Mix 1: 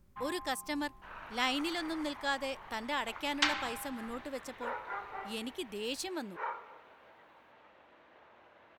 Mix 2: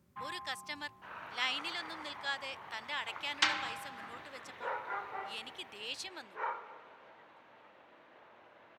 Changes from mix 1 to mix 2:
speech: add band-pass 2800 Hz, Q 0.71; second sound: send +6.5 dB; master: add HPF 89 Hz 24 dB/oct

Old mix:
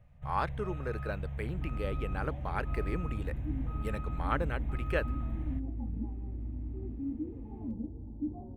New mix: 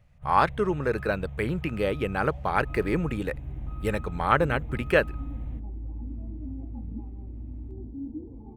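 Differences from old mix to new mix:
speech +11.0 dB; first sound: add bell 1700 Hz -5 dB 0.8 oct; second sound: entry +0.95 s

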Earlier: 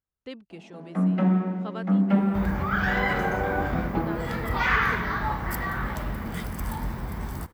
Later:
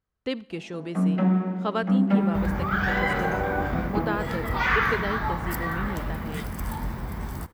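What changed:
speech +9.5 dB; reverb: on, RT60 0.60 s

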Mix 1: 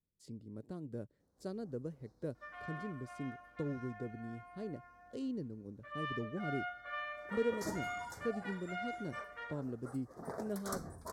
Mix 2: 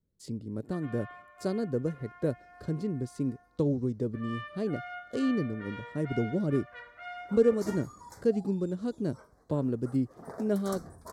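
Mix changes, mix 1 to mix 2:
speech +11.5 dB; first sound: entry -1.70 s

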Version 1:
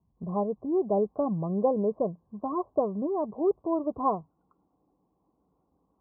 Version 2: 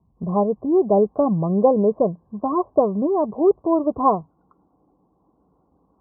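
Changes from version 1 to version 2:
speech +9.0 dB; background +9.5 dB

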